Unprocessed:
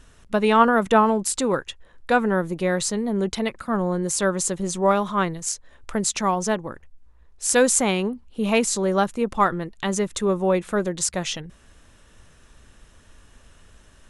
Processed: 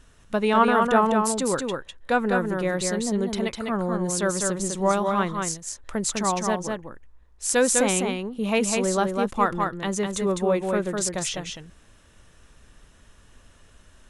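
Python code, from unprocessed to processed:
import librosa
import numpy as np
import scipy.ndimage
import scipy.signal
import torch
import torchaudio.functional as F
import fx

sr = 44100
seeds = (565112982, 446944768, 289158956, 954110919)

y = x + 10.0 ** (-4.0 / 20.0) * np.pad(x, (int(202 * sr / 1000.0), 0))[:len(x)]
y = y * 10.0 ** (-3.0 / 20.0)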